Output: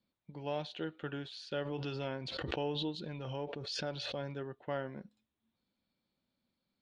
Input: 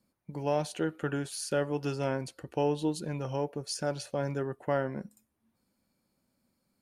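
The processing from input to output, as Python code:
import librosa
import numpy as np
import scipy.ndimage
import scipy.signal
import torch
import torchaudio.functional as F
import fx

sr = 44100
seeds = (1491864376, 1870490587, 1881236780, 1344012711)

y = fx.ladder_lowpass(x, sr, hz=4000.0, resonance_pct=65)
y = fx.pre_swell(y, sr, db_per_s=24.0, at=(1.64, 4.23), fade=0.02)
y = y * 10.0 ** (2.5 / 20.0)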